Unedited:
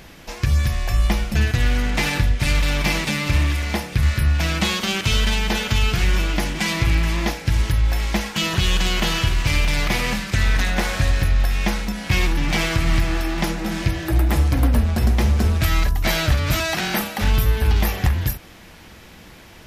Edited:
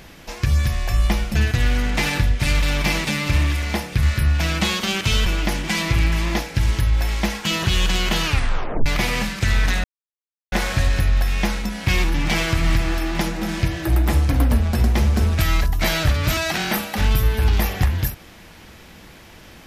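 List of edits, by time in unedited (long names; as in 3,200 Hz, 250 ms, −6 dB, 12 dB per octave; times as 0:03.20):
0:05.26–0:06.17: remove
0:09.16: tape stop 0.61 s
0:10.75: splice in silence 0.68 s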